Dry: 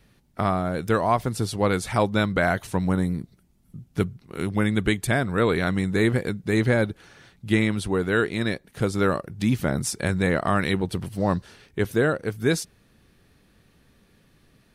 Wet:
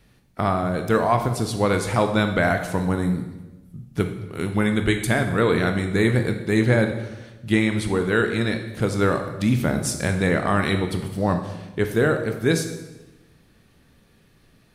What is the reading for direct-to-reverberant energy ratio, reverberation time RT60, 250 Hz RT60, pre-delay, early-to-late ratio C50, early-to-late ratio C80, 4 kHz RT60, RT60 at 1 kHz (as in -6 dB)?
5.5 dB, 1.1 s, 1.3 s, 17 ms, 8.0 dB, 10.5 dB, 0.95 s, 1.0 s